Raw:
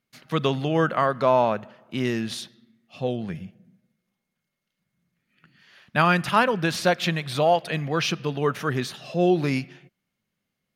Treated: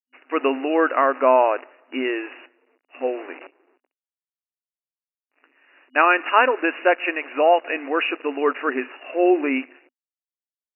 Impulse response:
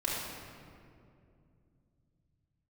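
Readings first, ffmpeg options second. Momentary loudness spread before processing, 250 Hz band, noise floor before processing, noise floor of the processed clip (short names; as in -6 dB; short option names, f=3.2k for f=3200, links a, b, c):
12 LU, +1.0 dB, -82 dBFS, under -85 dBFS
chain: -af "aemphasis=mode=production:type=50kf,acrusher=bits=7:dc=4:mix=0:aa=0.000001,afftfilt=real='re*between(b*sr/4096,250,2900)':imag='im*between(b*sr/4096,250,2900)':win_size=4096:overlap=0.75,volume=3.5dB"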